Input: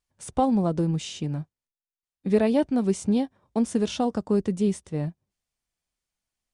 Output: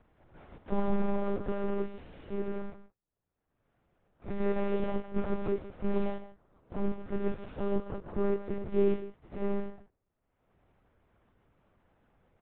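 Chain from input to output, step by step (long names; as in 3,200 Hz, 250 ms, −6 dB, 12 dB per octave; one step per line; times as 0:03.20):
compressing power law on the bin magnitudes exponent 0.35
brickwall limiter −11 dBFS, peak gain reduction 6 dB
single-tap delay 78 ms −16 dB
harmonic and percussive parts rebalanced percussive −11 dB
parametric band 310 Hz +9.5 dB 1.3 octaves
time stretch by phase vocoder 1.9×
upward compression, threshold −35 dBFS
one-pitch LPC vocoder at 8 kHz 200 Hz
low-pass filter 1,300 Hz 12 dB per octave
level −2 dB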